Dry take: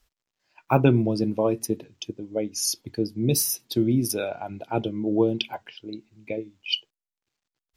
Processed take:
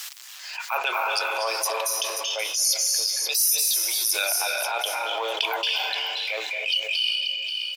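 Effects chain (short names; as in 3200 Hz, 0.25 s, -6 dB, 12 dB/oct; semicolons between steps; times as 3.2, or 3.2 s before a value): LPF 3700 Hz 6 dB/oct; tilt +4.5 dB/oct; on a send at -4 dB: reverb RT60 1.4 s, pre-delay 0.222 s; on the sum: transient shaper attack -9 dB, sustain +5 dB; in parallel at -9 dB: crossover distortion -35 dBFS; on the sum: Bessel high-pass 1000 Hz, order 8; echo 0.533 s -17.5 dB; fast leveller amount 70%; gain -4.5 dB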